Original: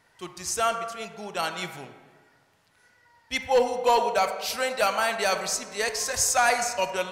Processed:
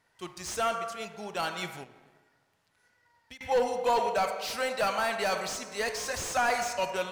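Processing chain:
0:01.83–0:03.41: downward compressor 20 to 1, threshold −44 dBFS, peak gain reduction 22 dB
leveller curve on the samples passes 1
slew-rate limiting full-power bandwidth 210 Hz
level −6 dB

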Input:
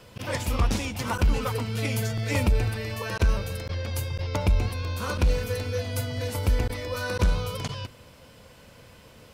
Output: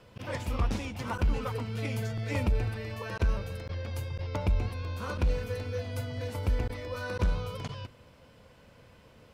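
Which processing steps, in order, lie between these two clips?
high-shelf EQ 4,400 Hz −10 dB
level −5 dB

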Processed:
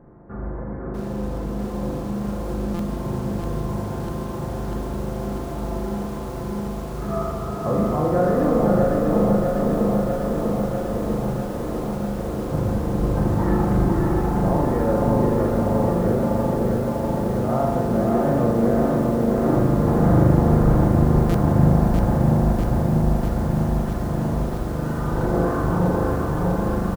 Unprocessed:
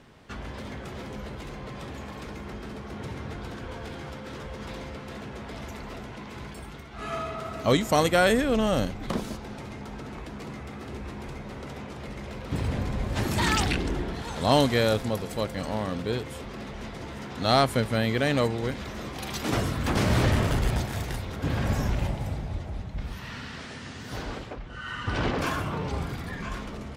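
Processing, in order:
brickwall limiter −17.5 dBFS, peak gain reduction 9.5 dB
Gaussian smoothing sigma 7.6 samples
comb filter 5.8 ms, depth 39%
single-tap delay 503 ms −4 dB
spring reverb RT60 1.3 s, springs 39 ms, chirp 55 ms, DRR −0.5 dB
buffer that repeats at 0:02.74/0:21.29, samples 256, times 8
feedback echo at a low word length 646 ms, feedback 80%, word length 8 bits, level −4 dB
level +4.5 dB

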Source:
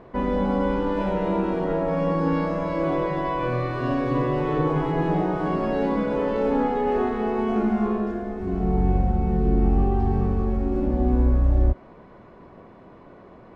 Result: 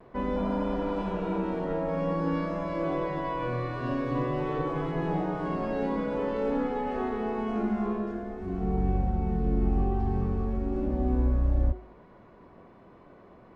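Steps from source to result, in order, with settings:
healed spectral selection 0:00.39–0:01.36, 540–2,600 Hz after
pitch vibrato 0.48 Hz 22 cents
hum removal 52.58 Hz, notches 17
level −5.5 dB

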